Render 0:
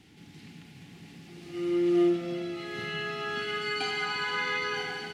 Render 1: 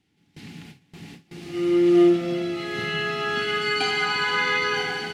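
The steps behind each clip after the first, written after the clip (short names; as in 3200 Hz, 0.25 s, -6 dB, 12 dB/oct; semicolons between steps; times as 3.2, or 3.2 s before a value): gate with hold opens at -39 dBFS; gain +7.5 dB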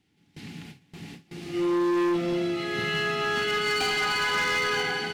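hard clip -22.5 dBFS, distortion -7 dB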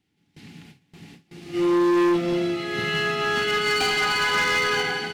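upward expander 1.5:1, over -40 dBFS; gain +5 dB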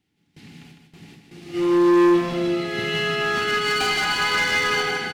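feedback echo 0.155 s, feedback 24%, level -6 dB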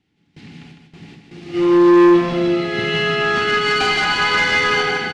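air absorption 81 m; gain +5.5 dB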